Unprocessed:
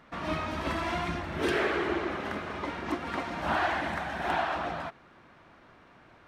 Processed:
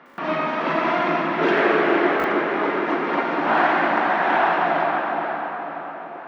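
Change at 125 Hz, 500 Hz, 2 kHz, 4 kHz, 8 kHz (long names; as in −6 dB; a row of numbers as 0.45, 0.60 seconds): +1.5 dB, +12.0 dB, +11.0 dB, +5.5 dB, can't be measured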